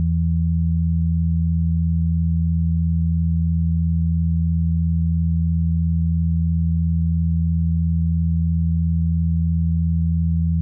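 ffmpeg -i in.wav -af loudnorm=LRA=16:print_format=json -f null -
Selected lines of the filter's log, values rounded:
"input_i" : "-20.4",
"input_tp" : "-13.8",
"input_lra" : "0.0",
"input_thresh" : "-30.4",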